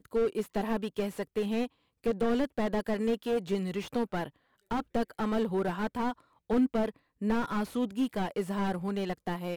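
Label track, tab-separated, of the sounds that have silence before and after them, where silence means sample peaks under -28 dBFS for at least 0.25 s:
2.060000	4.240000	sound
4.710000	6.110000	sound
6.500000	6.890000	sound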